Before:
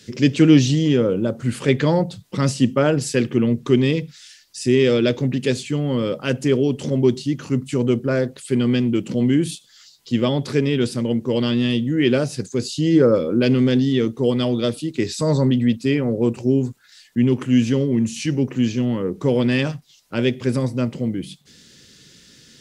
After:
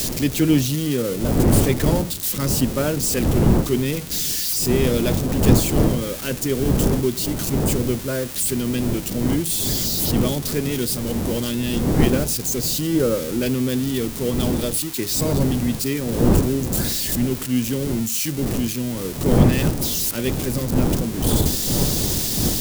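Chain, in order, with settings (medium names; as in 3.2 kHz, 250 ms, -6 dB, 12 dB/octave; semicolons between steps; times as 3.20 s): zero-crossing glitches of -12 dBFS; wind noise 260 Hz -18 dBFS; trim -5 dB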